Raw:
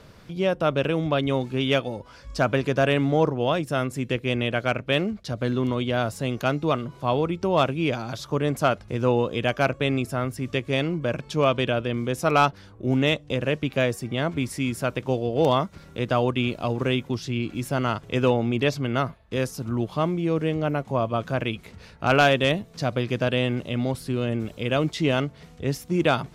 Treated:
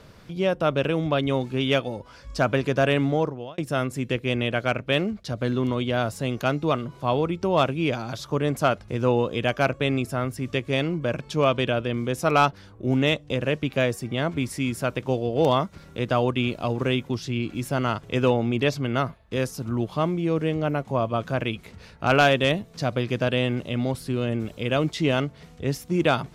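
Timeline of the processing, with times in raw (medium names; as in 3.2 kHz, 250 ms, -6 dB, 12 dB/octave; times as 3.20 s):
3.05–3.58 s: fade out linear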